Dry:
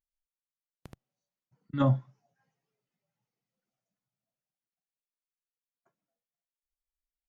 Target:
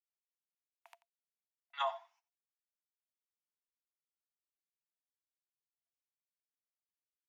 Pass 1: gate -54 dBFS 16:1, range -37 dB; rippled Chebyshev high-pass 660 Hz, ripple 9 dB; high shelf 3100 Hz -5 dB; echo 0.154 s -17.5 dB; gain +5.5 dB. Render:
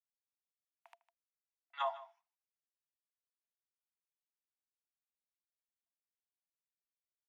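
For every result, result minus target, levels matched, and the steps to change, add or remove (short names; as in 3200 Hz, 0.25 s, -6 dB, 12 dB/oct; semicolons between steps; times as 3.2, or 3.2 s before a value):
echo 66 ms late; 4000 Hz band -4.5 dB
change: echo 88 ms -17.5 dB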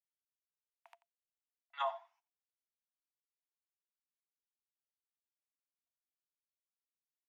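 4000 Hz band -4.5 dB
change: high shelf 3100 Hz +4 dB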